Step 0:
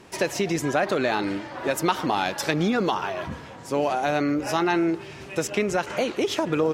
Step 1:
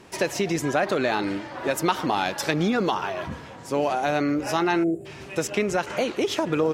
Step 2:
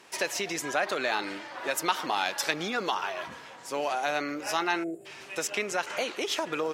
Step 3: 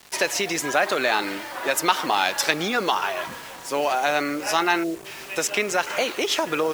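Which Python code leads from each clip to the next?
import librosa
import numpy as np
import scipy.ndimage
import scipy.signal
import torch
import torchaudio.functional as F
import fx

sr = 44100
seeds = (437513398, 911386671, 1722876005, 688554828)

y1 = fx.spec_box(x, sr, start_s=4.84, length_s=0.22, low_hz=770.0, high_hz=6900.0, gain_db=-29)
y2 = fx.highpass(y1, sr, hz=1100.0, slope=6)
y3 = fx.quant_dither(y2, sr, seeds[0], bits=8, dither='none')
y3 = y3 * 10.0 ** (7.0 / 20.0)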